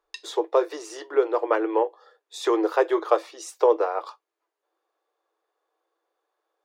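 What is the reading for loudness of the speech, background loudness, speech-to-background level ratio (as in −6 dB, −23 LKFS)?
−24.5 LKFS, −42.5 LKFS, 18.0 dB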